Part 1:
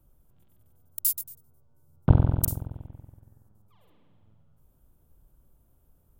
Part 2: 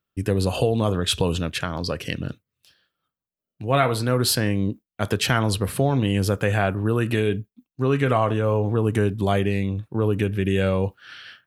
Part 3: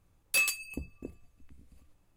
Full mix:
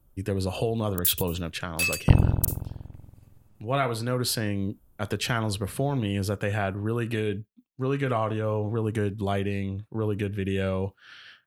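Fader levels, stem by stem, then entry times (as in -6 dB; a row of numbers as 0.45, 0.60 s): +0.5, -6.0, +0.5 dB; 0.00, 0.00, 1.45 s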